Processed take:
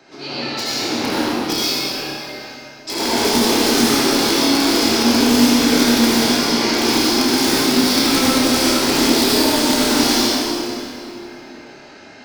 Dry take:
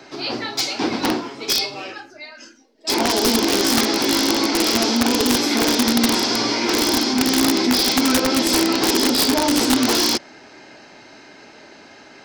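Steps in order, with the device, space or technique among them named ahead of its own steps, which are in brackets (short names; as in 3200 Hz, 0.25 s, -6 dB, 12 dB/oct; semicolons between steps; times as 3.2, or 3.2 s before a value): tunnel (flutter echo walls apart 4.9 m, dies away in 0.28 s; reverb RT60 2.9 s, pre-delay 66 ms, DRR -8 dB); gain -7 dB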